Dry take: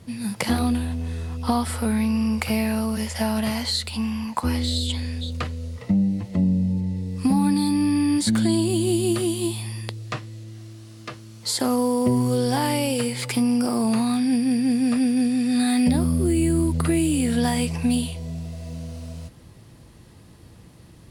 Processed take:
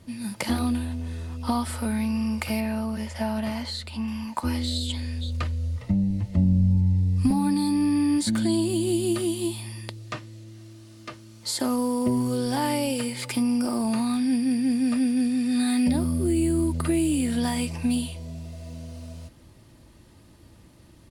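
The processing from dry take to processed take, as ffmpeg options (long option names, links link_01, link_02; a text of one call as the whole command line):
ffmpeg -i in.wav -filter_complex "[0:a]asettb=1/sr,asplit=3[link_01][link_02][link_03];[link_01]atrim=end=2.604[link_04];[link_02]atrim=start=2.6:end=4.08,asetpts=PTS-STARTPTS,afade=type=in:duration=0.004:curve=qsin,afade=type=out:start_time=1.476:duration=0.004:curve=qsin,highshelf=frequency=3800:gain=-9.5[link_05];[link_03]atrim=start=4.076[link_06];[link_04][link_05]acrossfade=duration=0.004:curve1=hsin:curve2=qsin[link_07];[link_07][link_06]acrossfade=duration=0.004:curve1=qsin:curve2=hsin,asettb=1/sr,asplit=3[link_08][link_09][link_10];[link_08]atrim=end=4.944[link_11];[link_09]atrim=start=4.94:end=7.31,asetpts=PTS-STARTPTS,afade=type=in:duration=0.004:curve=qsin,afade=type=out:start_time=2.366:duration=0.004:curve=qsin,asubboost=boost=11.5:cutoff=130[link_12];[link_10]atrim=start=7.306[link_13];[link_11][link_12]acrossfade=duration=0.004:curve1=hsin:curve2=qsin[link_14];[link_14][link_13]acrossfade=duration=0.004:curve1=qsin:curve2=hsin,aecho=1:1:3.3:0.35,volume=-4dB" out.wav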